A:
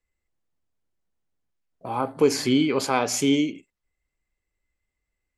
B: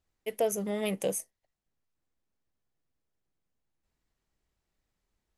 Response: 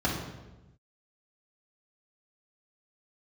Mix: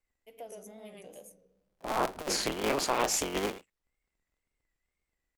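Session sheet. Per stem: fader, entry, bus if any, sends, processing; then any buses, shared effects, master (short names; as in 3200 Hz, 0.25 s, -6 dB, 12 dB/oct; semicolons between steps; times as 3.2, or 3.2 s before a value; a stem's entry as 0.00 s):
-5.0 dB, 0.00 s, no send, no echo send, cycle switcher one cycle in 3, inverted; negative-ratio compressor -23 dBFS, ratio -0.5
-16.0 dB, 0.00 s, send -16.5 dB, echo send -3 dB, auto duck -17 dB, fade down 1.90 s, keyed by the first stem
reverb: on, RT60 1.0 s, pre-delay 3 ms
echo: echo 0.116 s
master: bell 110 Hz -8 dB 1.9 oct; wow and flutter 82 cents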